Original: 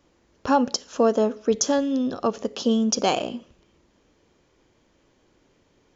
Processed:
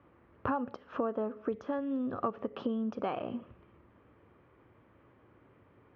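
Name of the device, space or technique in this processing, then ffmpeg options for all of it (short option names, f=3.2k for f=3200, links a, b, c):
bass amplifier: -af "acompressor=threshold=-32dB:ratio=5,highpass=66,equalizer=f=72:t=q:w=4:g=5,equalizer=f=110:t=q:w=4:g=9,equalizer=f=1.2k:t=q:w=4:g=7,lowpass=f=2.3k:w=0.5412,lowpass=f=2.3k:w=1.3066"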